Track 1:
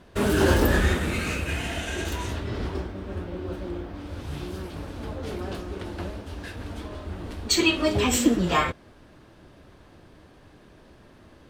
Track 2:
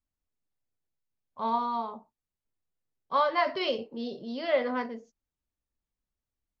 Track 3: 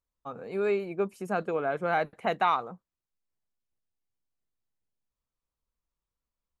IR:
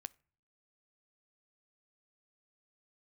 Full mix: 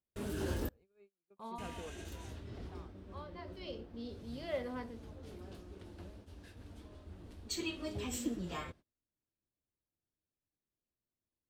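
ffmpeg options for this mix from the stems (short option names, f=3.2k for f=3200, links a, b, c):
-filter_complex "[0:a]volume=-18dB,asplit=3[a][b][c];[a]atrim=end=0.69,asetpts=PTS-STARTPTS,afade=t=out:st=0.686:d=0.004:c=hsin[d];[b]atrim=start=0.69:end=1.58,asetpts=PTS-STARTPTS,volume=0[e];[c]atrim=start=1.58,asetpts=PTS-STARTPTS,afade=t=in:d=0.004:c=hsin[f];[d][e][f]concat=n=3:v=0:a=1,asplit=2[g][h];[h]volume=-5dB[i];[1:a]volume=2dB,afade=t=out:st=1.27:d=0.64:silence=0.298538,afade=t=in:st=3.52:d=0.42:silence=0.251189,asplit=2[j][k];[2:a]adelay=300,volume=-17.5dB,asplit=2[l][m];[m]volume=-8dB[n];[k]apad=whole_len=304290[o];[l][o]sidechaingate=range=-33dB:threshold=-54dB:ratio=16:detection=peak[p];[3:a]atrim=start_sample=2205[q];[i][n]amix=inputs=2:normalize=0[r];[r][q]afir=irnorm=-1:irlink=0[s];[g][j][p][s]amix=inputs=4:normalize=0,agate=range=-29dB:threshold=-54dB:ratio=16:detection=peak,equalizer=f=1.3k:w=0.45:g=-6"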